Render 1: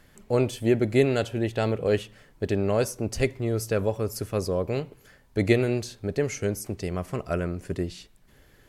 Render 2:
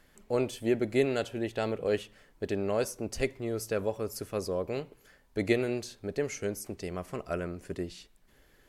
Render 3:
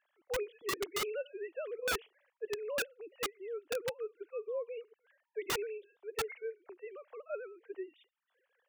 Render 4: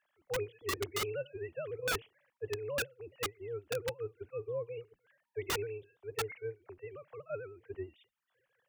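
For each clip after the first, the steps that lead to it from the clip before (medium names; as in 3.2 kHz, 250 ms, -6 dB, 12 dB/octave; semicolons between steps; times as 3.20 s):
peaking EQ 110 Hz -7.5 dB 1.3 oct; trim -4.5 dB
formants replaced by sine waves; integer overflow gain 22 dB; trim -6.5 dB
octave divider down 2 oct, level -2 dB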